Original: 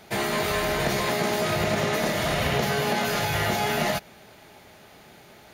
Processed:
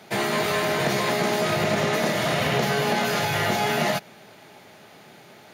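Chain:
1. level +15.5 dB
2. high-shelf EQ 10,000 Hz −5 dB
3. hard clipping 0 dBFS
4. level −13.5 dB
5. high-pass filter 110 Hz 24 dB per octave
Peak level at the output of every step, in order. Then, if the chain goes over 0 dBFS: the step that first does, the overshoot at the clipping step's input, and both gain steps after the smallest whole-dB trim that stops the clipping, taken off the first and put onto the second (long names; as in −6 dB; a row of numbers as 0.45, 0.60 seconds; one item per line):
+3.5, +3.5, 0.0, −13.5, −9.0 dBFS
step 1, 3.5 dB
step 1 +11.5 dB, step 4 −9.5 dB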